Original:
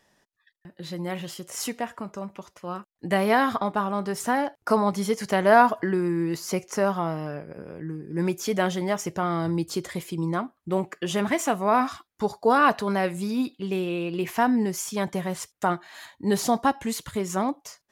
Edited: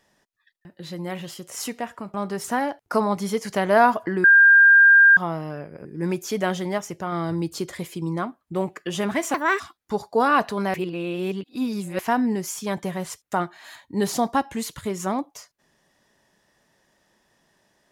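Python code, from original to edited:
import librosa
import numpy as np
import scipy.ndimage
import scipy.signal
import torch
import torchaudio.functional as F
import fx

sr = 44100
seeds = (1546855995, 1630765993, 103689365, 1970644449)

y = fx.edit(x, sr, fx.cut(start_s=2.14, length_s=1.76),
    fx.bleep(start_s=6.0, length_s=0.93, hz=1600.0, db=-9.0),
    fx.cut(start_s=7.61, length_s=0.4),
    fx.clip_gain(start_s=8.94, length_s=0.34, db=-3.0),
    fx.speed_span(start_s=11.5, length_s=0.4, speed=1.54),
    fx.reverse_span(start_s=13.04, length_s=1.25), tone=tone)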